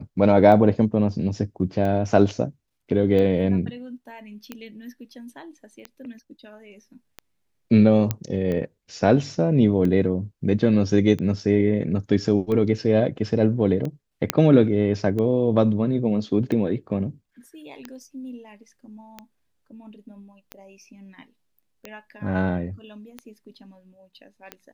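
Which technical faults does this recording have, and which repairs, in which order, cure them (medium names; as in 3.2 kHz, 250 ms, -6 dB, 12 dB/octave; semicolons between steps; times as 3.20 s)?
tick 45 rpm -18 dBFS
8.11 s: pop -9 dBFS
14.30 s: pop -2 dBFS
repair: de-click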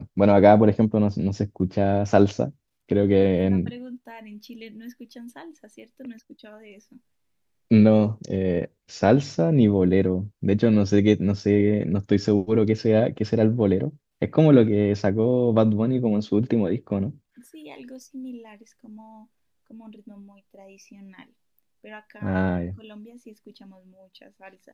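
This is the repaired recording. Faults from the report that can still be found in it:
nothing left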